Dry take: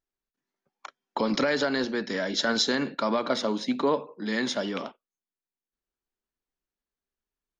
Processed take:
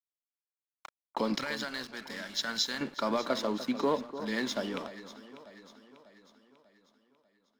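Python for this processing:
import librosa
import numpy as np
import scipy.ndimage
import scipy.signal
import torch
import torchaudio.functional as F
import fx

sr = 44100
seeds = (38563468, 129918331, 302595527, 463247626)

y = fx.peak_eq(x, sr, hz=410.0, db=-14.5, octaves=1.9, at=(1.38, 2.81))
y = np.sign(y) * np.maximum(np.abs(y) - 10.0 ** (-43.5 / 20.0), 0.0)
y = fx.echo_alternate(y, sr, ms=297, hz=1300.0, feedback_pct=69, wet_db=-12)
y = y * 10.0 ** (-3.5 / 20.0)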